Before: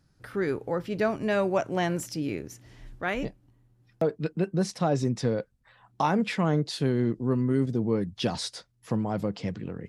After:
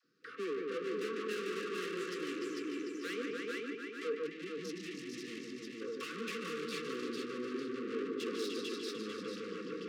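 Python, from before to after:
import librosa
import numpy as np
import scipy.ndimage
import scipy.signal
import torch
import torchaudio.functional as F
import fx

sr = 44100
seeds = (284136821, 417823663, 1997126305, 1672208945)

p1 = fx.air_absorb(x, sr, metres=140.0)
p2 = p1 + fx.echo_heads(p1, sr, ms=148, heads='all three', feedback_pct=42, wet_db=-7.5, dry=0)
p3 = fx.tube_stage(p2, sr, drive_db=36.0, bias=0.35)
p4 = fx.brickwall_bandstop(p3, sr, low_hz=520.0, high_hz=1100.0)
p5 = fx.peak_eq(p4, sr, hz=700.0, db=-4.0, octaves=2.9)
p6 = fx.small_body(p5, sr, hz=(470.0, 680.0, 1100.0, 2700.0), ring_ms=30, db=8)
p7 = fx.dispersion(p6, sr, late='lows', ms=46.0, hz=660.0)
p8 = fx.spec_box(p7, sr, start_s=4.27, length_s=1.54, low_hz=380.0, high_hz=1700.0, gain_db=-16)
p9 = scipy.signal.sosfilt(scipy.signal.butter(4, 250.0, 'highpass', fs=sr, output='sos'), p8)
p10 = p9 + 10.0 ** (-6.5 / 20.0) * np.pad(p9, (int(447 * sr / 1000.0), 0))[:len(p9)]
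y = p10 * 10.0 ** (1.0 / 20.0)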